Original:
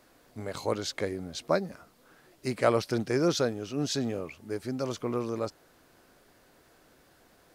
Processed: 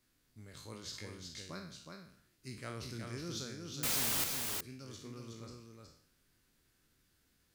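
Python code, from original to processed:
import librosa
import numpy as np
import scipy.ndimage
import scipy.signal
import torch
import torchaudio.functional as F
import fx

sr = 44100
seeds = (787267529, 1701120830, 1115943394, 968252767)

y = fx.spec_trails(x, sr, decay_s=0.58)
y = fx.tone_stack(y, sr, knobs='6-0-2')
y = fx.quant_dither(y, sr, seeds[0], bits=6, dither='triangular', at=(3.83, 4.24))
y = y + 10.0 ** (-4.5 / 20.0) * np.pad(y, (int(368 * sr / 1000.0), 0))[:len(y)]
y = y * 10.0 ** (2.5 / 20.0)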